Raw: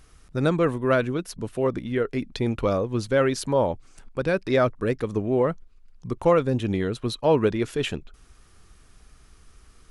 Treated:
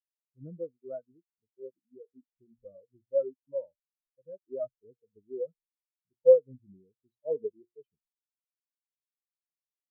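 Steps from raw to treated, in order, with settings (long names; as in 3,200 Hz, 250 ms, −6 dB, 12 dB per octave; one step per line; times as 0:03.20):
hum removal 118.6 Hz, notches 34
every bin expanded away from the loudest bin 4 to 1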